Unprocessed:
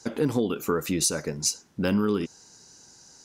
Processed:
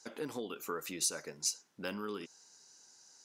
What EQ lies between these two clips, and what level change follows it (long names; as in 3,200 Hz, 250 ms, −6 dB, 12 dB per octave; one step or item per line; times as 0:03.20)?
high-pass filter 750 Hz 6 dB per octave
−8.0 dB